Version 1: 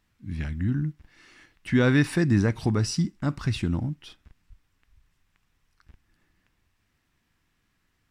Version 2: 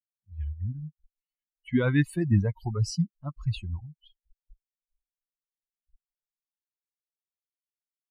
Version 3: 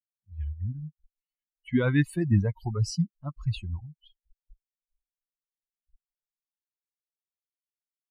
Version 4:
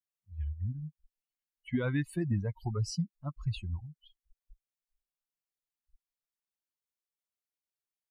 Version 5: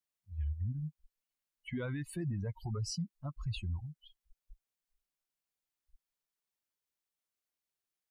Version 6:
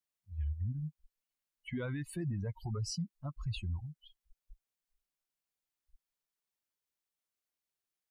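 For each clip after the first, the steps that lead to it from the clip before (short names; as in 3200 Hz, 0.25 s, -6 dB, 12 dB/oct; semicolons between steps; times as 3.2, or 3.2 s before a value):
per-bin expansion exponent 3; low shelf 140 Hz +10 dB; gain -1.5 dB
nothing audible
compressor 4:1, threshold -25 dBFS, peak gain reduction 8 dB; gain -2.5 dB
limiter -31.5 dBFS, peak gain reduction 11.5 dB; gain +1.5 dB
short-mantissa float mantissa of 8-bit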